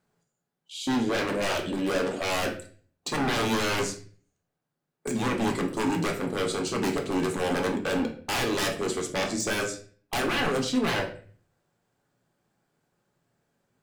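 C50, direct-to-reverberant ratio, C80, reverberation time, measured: 10.0 dB, 2.5 dB, 14.0 dB, 0.45 s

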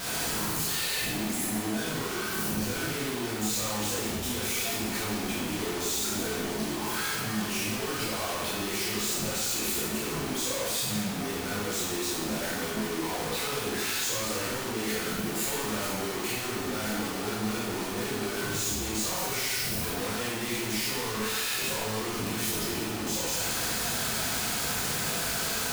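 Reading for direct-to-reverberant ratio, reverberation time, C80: -7.0 dB, 1.2 s, 2.0 dB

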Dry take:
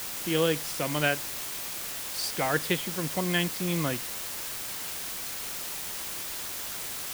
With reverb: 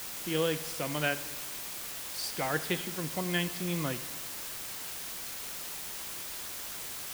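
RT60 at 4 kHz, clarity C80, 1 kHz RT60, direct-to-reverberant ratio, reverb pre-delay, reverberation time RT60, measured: 1.3 s, 15.0 dB, 1.4 s, 12.0 dB, 5 ms, 1.4 s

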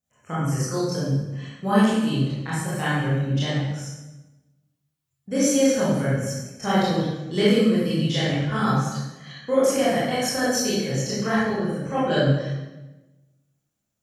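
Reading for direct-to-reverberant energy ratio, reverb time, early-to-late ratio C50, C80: -10.5 dB, 1.1 s, -2.5 dB, 1.5 dB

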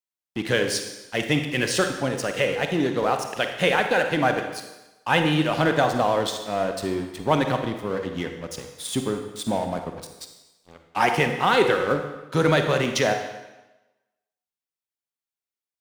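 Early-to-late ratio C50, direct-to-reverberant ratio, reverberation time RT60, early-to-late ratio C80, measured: 6.5 dB, 5.5 dB, 1.0 s, 8.5 dB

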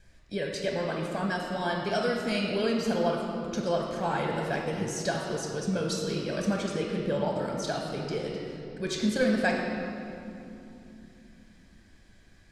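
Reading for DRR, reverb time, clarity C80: -1.0 dB, 2.9 s, 3.0 dB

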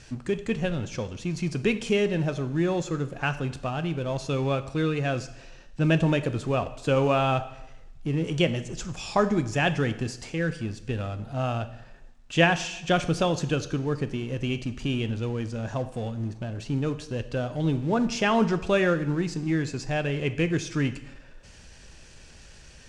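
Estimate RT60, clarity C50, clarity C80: 0.90 s, 14.0 dB, 16.0 dB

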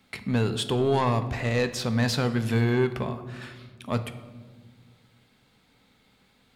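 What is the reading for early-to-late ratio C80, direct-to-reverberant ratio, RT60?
14.0 dB, 8.5 dB, 1.5 s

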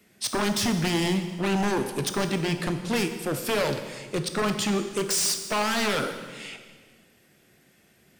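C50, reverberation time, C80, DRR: 8.5 dB, 1.6 s, 10.0 dB, 7.0 dB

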